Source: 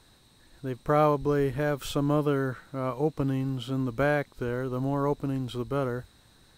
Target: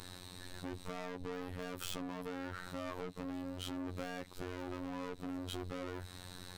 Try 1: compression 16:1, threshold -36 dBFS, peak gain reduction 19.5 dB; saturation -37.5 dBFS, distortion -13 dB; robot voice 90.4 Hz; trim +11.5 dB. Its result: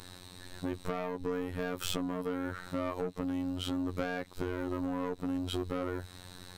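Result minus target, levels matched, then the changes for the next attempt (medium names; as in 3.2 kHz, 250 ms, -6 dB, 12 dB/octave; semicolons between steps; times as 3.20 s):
saturation: distortion -8 dB
change: saturation -49 dBFS, distortion -5 dB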